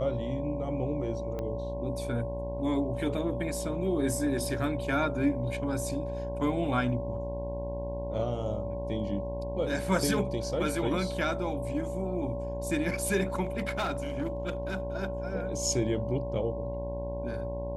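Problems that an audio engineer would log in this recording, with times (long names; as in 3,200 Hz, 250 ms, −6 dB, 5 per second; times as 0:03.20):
mains buzz 60 Hz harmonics 18 −37 dBFS
whistle 570 Hz −35 dBFS
0:01.39: click −23 dBFS
0:13.44–0:14.80: clipping −26 dBFS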